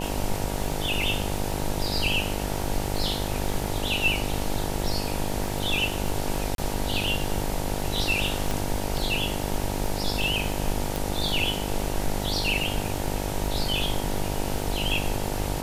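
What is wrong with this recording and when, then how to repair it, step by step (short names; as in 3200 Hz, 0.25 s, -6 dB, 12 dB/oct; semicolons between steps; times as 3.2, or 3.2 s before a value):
buzz 50 Hz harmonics 19 -31 dBFS
crackle 35/s -31 dBFS
6.55–6.58 gap 32 ms
8.51 pop
10.96 pop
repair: de-click; de-hum 50 Hz, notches 19; interpolate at 6.55, 32 ms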